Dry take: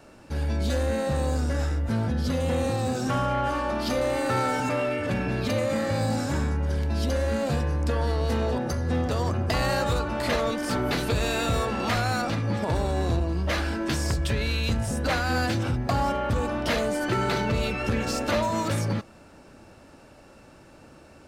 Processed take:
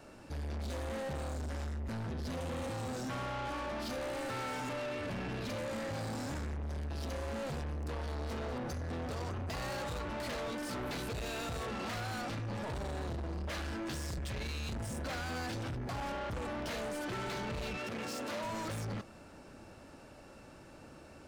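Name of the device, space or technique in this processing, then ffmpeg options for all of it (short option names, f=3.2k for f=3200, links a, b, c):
saturation between pre-emphasis and de-emphasis: -filter_complex "[0:a]highshelf=f=6.8k:g=8.5,asoftclip=type=tanh:threshold=-33.5dB,highshelf=f=6.8k:g=-8.5,asettb=1/sr,asplit=3[a][b][c];[a]atrim=end=17.774[d];[b]atrim=start=17.77:end=18.44,asetpts=PTS-STARTPTS,afade=t=in:d=0.004:c=qsin,afade=t=out:st=0.666:d=0.004:c=qsin,highpass=150[e];[c]atrim=start=18.436[f];[d][e]acrossfade=d=0.004:c1=hsin:c2=qsin[g];[g][f]acrossfade=d=0.004:c1=qsin:c2=hsin,volume=-3dB"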